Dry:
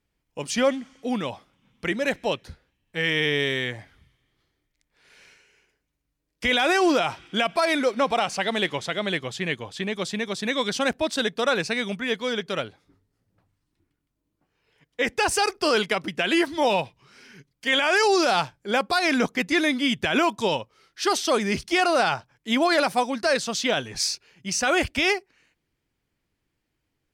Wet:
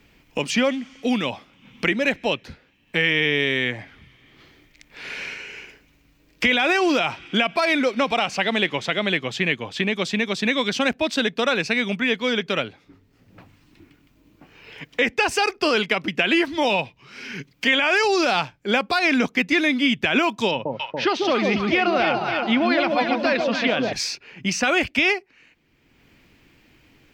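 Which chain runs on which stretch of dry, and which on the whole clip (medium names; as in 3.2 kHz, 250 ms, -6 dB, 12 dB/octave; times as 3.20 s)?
20.51–23.93 s: distance through air 220 m + hum notches 50/100/150 Hz + echo whose repeats swap between lows and highs 142 ms, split 850 Hz, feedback 65%, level -2 dB
whole clip: fifteen-band graphic EQ 250 Hz +4 dB, 2.5 kHz +7 dB, 10 kHz -10 dB; three bands compressed up and down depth 70%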